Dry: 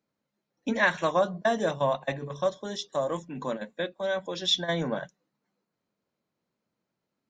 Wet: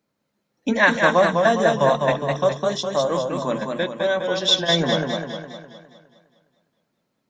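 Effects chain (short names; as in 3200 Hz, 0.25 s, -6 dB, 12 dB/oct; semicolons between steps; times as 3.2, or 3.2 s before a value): warbling echo 0.205 s, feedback 50%, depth 84 cents, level -4 dB; gain +7 dB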